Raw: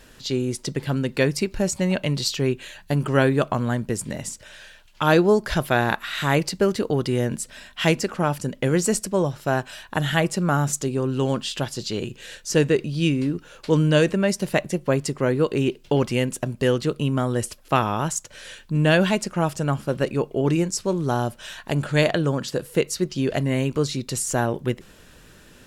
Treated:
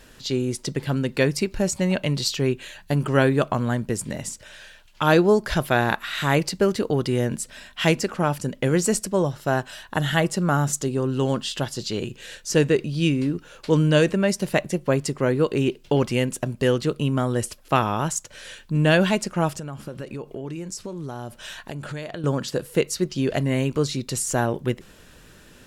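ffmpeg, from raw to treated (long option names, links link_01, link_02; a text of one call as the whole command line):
ffmpeg -i in.wav -filter_complex "[0:a]asettb=1/sr,asplit=3[link_01][link_02][link_03];[link_01]atrim=end=9.084[link_04];[link_02]atrim=start=9.08:end=11.79,asetpts=PTS-STARTPTS,afade=type=in:duration=0.004:curve=qsin,afade=type=out:start_time=2.706:duration=0.004:curve=qsin,bandreject=frequency=2400:width=12[link_05];[link_03]atrim=start=11.786[link_06];[link_04][link_05]acrossfade=duration=0.004:curve1=hsin:curve2=qsin[link_07];[link_07][link_06]acrossfade=duration=0.004:curve1=qsin:curve2=hsin,asettb=1/sr,asplit=3[link_08][link_09][link_10];[link_08]atrim=end=19.544[link_11];[link_09]atrim=start=19.54:end=22.24,asetpts=PTS-STARTPTS,afade=type=in:duration=0.004:curve=qsin,afade=type=out:start_time=2.696:duration=0.004:curve=qsin,acompressor=threshold=-29dB:ratio=8:attack=3.2:release=140:knee=1:detection=peak[link_12];[link_10]atrim=start=22.236[link_13];[link_11][link_12]acrossfade=duration=0.004:curve1=hsin:curve2=qsin[link_14];[link_14][link_13]acrossfade=duration=0.004:curve1=qsin:curve2=hsin" out.wav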